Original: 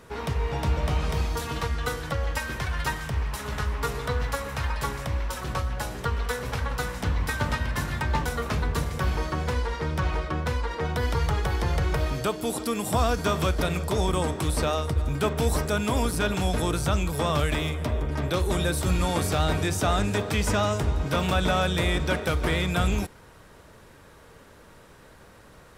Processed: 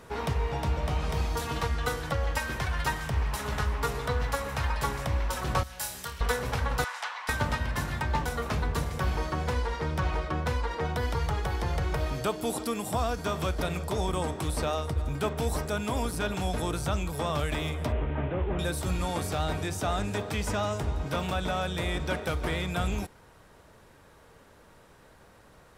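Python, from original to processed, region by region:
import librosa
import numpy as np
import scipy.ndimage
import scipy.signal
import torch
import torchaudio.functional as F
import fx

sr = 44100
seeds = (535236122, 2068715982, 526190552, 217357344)

y = fx.chain(x, sr, fx.pre_emphasis(coefficient=0.9),
    fx.room_flutter(wall_m=4.7, rt60_s=0.3), at=(5.63, 6.21))
y = fx.chain(y, sr, fx.highpass(hz=860.0, slope=24),
    fx.air_absorb(metres=52.0), at=(6.84, 7.29))
y = fx.chain(y, sr, fx.delta_mod(bps=16000, step_db=-38.5),
    fx.notch(hz=1100.0, q=29.0), at=(17.92, 18.59))
y = fx.peak_eq(y, sr, hz=770.0, db=3.0, octaves=0.66)
y = fx.rider(y, sr, range_db=10, speed_s=0.5)
y = y * librosa.db_to_amplitude(-4.0)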